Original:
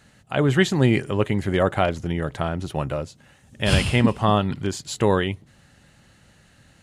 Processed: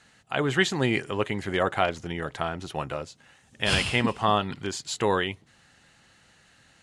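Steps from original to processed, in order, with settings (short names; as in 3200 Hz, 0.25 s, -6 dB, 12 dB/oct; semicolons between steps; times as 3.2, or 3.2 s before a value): LPF 9100 Hz 12 dB/oct; low shelf 340 Hz -11.5 dB; notch 580 Hz, Q 12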